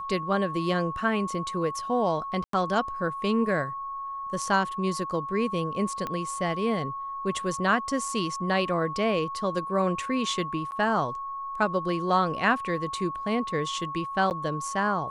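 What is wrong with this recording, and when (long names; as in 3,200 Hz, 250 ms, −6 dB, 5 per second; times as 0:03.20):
whistle 1,100 Hz −32 dBFS
0:02.44–0:02.53: drop-out 93 ms
0:06.07: click −18 dBFS
0:10.71–0:10.72: drop-out 9.8 ms
0:14.30–0:14.31: drop-out 9.4 ms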